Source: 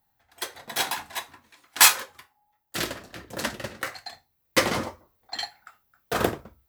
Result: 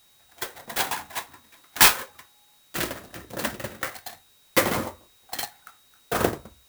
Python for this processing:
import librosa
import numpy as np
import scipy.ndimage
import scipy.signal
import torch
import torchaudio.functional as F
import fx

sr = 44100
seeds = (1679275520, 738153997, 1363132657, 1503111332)

y = x + 10.0 ** (-57.0 / 20.0) * np.sin(2.0 * np.pi * 3800.0 * np.arange(len(x)) / sr)
y = fx.clock_jitter(y, sr, seeds[0], jitter_ms=0.049)
y = F.gain(torch.from_numpy(y), 1.0).numpy()